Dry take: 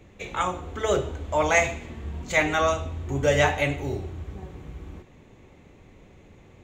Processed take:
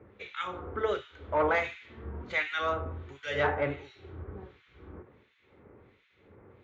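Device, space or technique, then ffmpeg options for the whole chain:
guitar amplifier with harmonic tremolo: -filter_complex "[0:a]acrossover=split=1800[s0][s1];[s0]aeval=exprs='val(0)*(1-1/2+1/2*cos(2*PI*1.4*n/s))':c=same[s2];[s1]aeval=exprs='val(0)*(1-1/2-1/2*cos(2*PI*1.4*n/s))':c=same[s3];[s2][s3]amix=inputs=2:normalize=0,asoftclip=type=tanh:threshold=0.133,highpass=94,equalizer=f=160:t=q:w=4:g=-10,equalizer=f=260:t=q:w=4:g=-4,equalizer=f=440:t=q:w=4:g=4,equalizer=f=700:t=q:w=4:g=-5,equalizer=f=1400:t=q:w=4:g=6,equalizer=f=2700:t=q:w=4:g=-4,lowpass=f=3900:w=0.5412,lowpass=f=3900:w=1.3066"

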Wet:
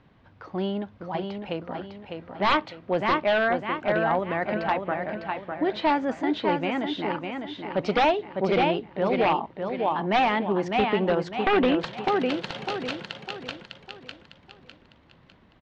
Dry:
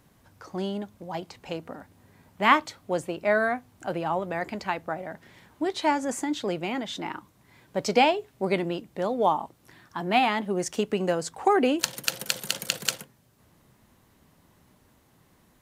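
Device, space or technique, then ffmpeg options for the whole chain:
synthesiser wavefolder: -af "aecho=1:1:603|1206|1809|2412|3015:0.531|0.207|0.0807|0.0315|0.0123,aeval=exprs='0.141*(abs(mod(val(0)/0.141+3,4)-2)-1)':c=same,lowpass=f=3600:w=0.5412,lowpass=f=3600:w=1.3066,volume=1.33"

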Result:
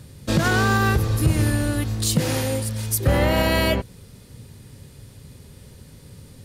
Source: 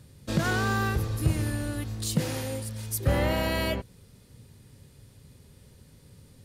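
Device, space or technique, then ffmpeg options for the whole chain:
clipper into limiter: -af "asoftclip=type=hard:threshold=0.188,alimiter=limit=0.119:level=0:latency=1:release=135,volume=2.82"

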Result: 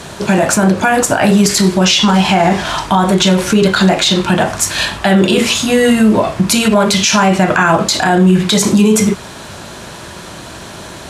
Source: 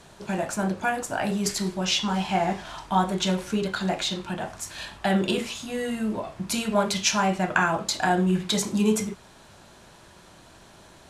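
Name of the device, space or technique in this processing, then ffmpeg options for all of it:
mastering chain: -af "highpass=53,equalizer=f=800:t=o:w=0.43:g=-2.5,acompressor=threshold=0.0501:ratio=2,asoftclip=type=hard:threshold=0.266,alimiter=level_in=12.6:limit=0.891:release=50:level=0:latency=1,volume=0.891"

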